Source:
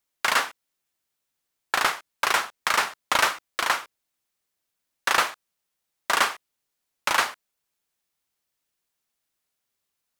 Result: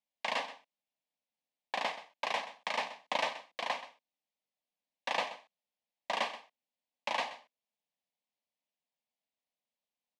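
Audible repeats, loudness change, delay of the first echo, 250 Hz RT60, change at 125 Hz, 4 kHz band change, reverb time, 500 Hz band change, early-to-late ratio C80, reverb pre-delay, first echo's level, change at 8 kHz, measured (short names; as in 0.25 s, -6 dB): 1, -12.0 dB, 0.129 s, none, under -10 dB, -11.0 dB, none, -5.5 dB, none, none, -15.0 dB, -20.5 dB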